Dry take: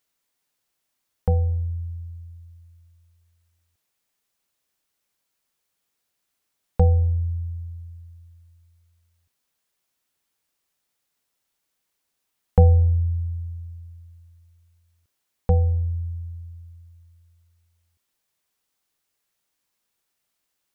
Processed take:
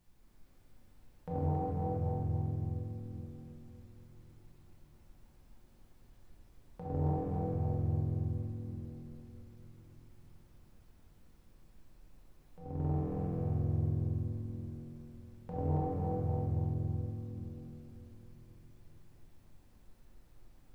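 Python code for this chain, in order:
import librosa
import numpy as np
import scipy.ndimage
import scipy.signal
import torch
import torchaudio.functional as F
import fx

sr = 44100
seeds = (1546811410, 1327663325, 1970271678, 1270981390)

p1 = fx.octave_divider(x, sr, octaves=2, level_db=-3.0)
p2 = scipy.signal.sosfilt(scipy.signal.butter(4, 89.0, 'highpass', fs=sr, output='sos'), p1)
p3 = fx.low_shelf(p2, sr, hz=120.0, db=-2.5)
p4 = p3 + 0.47 * np.pad(p3, (int(6.7 * sr / 1000.0), 0))[:len(p3)]
p5 = fx.over_compress(p4, sr, threshold_db=-26.0, ratio=-0.5)
p6 = fx.dmg_noise_colour(p5, sr, seeds[0], colour='brown', level_db=-60.0)
p7 = p6 + fx.echo_feedback(p6, sr, ms=274, feedback_pct=45, wet_db=-4.0, dry=0)
p8 = fx.room_shoebox(p7, sr, seeds[1], volume_m3=220.0, walls='hard', distance_m=0.95)
p9 = fx.doppler_dist(p8, sr, depth_ms=0.23)
y = F.gain(torch.from_numpy(p9), -8.5).numpy()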